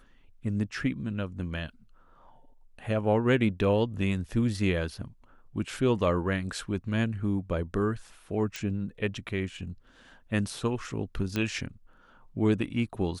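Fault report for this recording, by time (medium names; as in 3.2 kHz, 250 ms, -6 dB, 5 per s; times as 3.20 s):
8.56 s: pop -19 dBFS
11.36 s: pop -16 dBFS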